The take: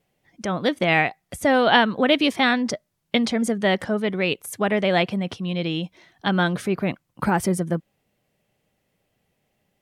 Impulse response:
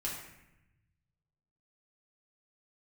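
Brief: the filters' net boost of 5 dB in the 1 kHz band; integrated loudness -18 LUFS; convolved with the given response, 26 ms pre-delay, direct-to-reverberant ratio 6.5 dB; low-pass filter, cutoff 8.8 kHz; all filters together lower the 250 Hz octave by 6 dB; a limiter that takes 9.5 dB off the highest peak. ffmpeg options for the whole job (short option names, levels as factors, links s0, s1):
-filter_complex "[0:a]lowpass=8800,equalizer=f=250:t=o:g=-8.5,equalizer=f=1000:t=o:g=7.5,alimiter=limit=0.355:level=0:latency=1,asplit=2[s0][s1];[1:a]atrim=start_sample=2205,adelay=26[s2];[s1][s2]afir=irnorm=-1:irlink=0,volume=0.355[s3];[s0][s3]amix=inputs=2:normalize=0,volume=1.68"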